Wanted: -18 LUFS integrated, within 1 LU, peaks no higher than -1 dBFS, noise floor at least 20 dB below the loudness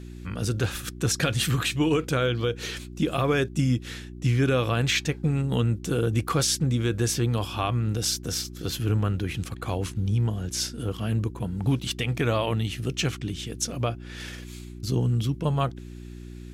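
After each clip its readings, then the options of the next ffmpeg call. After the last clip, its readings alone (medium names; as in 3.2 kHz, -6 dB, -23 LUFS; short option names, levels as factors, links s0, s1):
hum 60 Hz; highest harmonic 360 Hz; hum level -39 dBFS; loudness -26.5 LUFS; peak level -12.0 dBFS; loudness target -18.0 LUFS
-> -af "bandreject=f=60:t=h:w=4,bandreject=f=120:t=h:w=4,bandreject=f=180:t=h:w=4,bandreject=f=240:t=h:w=4,bandreject=f=300:t=h:w=4,bandreject=f=360:t=h:w=4"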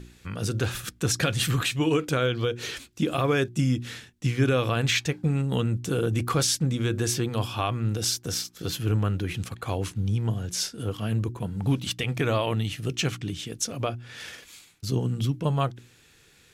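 hum not found; loudness -27.0 LUFS; peak level -11.5 dBFS; loudness target -18.0 LUFS
-> -af "volume=2.82"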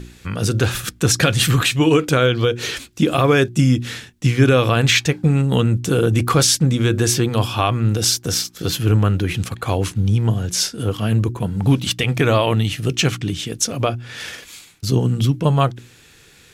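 loudness -18.0 LUFS; peak level -2.5 dBFS; noise floor -49 dBFS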